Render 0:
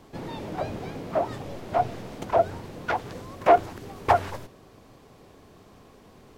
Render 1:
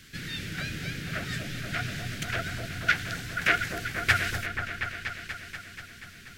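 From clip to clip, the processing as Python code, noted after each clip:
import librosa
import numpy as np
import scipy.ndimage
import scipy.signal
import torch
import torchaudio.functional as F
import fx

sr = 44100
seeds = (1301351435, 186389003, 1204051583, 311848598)

y = fx.curve_eq(x, sr, hz=(160.0, 960.0, 1500.0), db=(0, -25, 10))
y = fx.echo_opening(y, sr, ms=241, hz=750, octaves=1, feedback_pct=70, wet_db=-3)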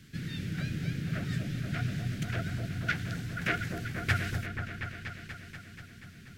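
y = fx.peak_eq(x, sr, hz=150.0, db=13.0, octaves=2.8)
y = F.gain(torch.from_numpy(y), -8.5).numpy()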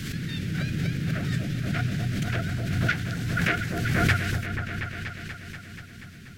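y = fx.pre_swell(x, sr, db_per_s=27.0)
y = F.gain(torch.from_numpy(y), 4.5).numpy()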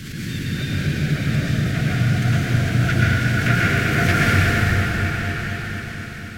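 y = fx.rev_plate(x, sr, seeds[0], rt60_s=4.6, hf_ratio=0.8, predelay_ms=95, drr_db=-7.5)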